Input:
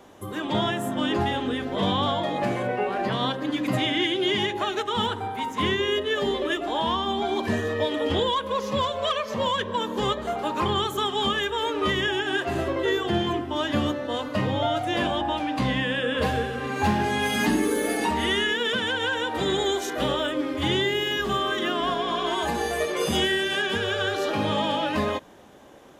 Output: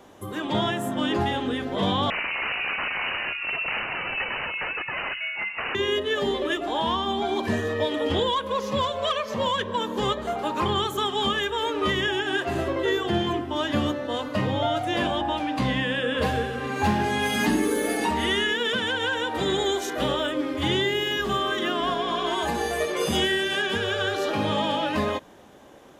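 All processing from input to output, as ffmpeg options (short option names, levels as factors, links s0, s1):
-filter_complex "[0:a]asettb=1/sr,asplit=3[s0][s1][s2];[s0]atrim=end=2.104[s3];[s1]atrim=start=2.1:end=5.75,asetpts=PTS-STARTPTS,afade=t=in:d=0.004:c=qsin,afade=t=out:st=3.646:d=0.004:c=qsin,bandreject=f=60:t=h:w=6,bandreject=f=120:t=h:w=6,bandreject=f=180:t=h:w=6,bandreject=f=240:t=h:w=6,bandreject=f=300:t=h:w=6,bandreject=f=360:t=h:w=6,aeval=exprs='(mod(11.2*val(0)+1,2)-1)/11.2':c=same,lowpass=f=2600:t=q:w=0.5098,lowpass=f=2600:t=q:w=0.6013,lowpass=f=2600:t=q:w=0.9,lowpass=f=2600:t=q:w=2.563,afreqshift=-3000[s4];[s2]atrim=start=5.746[s5];[s3][s4]acrossfade=d=0.004:c1=hsin:c2=qsin[s6];[s6][s5]acrossfade=d=0.004:c1=qsin:c2=hsin"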